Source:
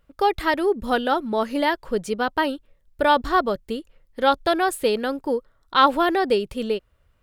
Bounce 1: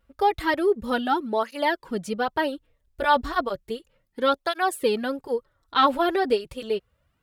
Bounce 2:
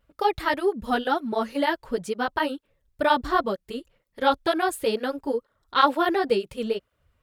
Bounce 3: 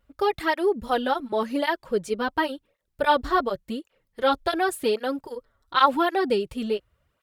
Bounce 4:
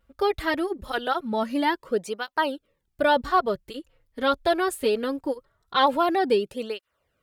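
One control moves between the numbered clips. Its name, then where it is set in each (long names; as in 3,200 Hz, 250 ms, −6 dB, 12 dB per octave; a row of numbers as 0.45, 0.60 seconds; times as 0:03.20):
through-zero flanger with one copy inverted, nulls at: 0.33, 2.1, 0.9, 0.22 Hertz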